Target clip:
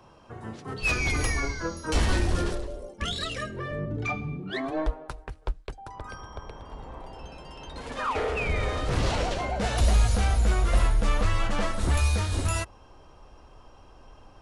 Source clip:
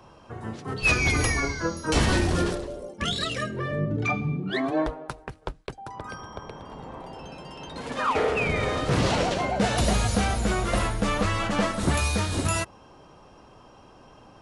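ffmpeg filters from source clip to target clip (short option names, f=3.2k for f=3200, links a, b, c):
-af "asoftclip=type=tanh:threshold=-14.5dB,asubboost=boost=6.5:cutoff=60,volume=-3dB"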